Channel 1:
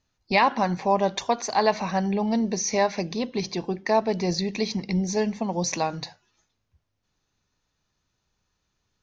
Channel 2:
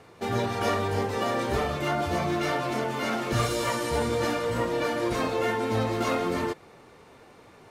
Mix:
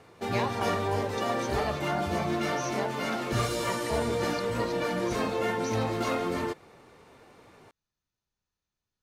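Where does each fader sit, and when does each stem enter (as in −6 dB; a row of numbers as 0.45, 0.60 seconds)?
−13.5, −2.5 decibels; 0.00, 0.00 seconds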